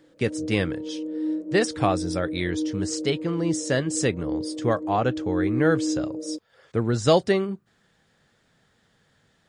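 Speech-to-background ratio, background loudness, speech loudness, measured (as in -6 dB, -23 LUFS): 4.5 dB, -30.5 LUFS, -26.0 LUFS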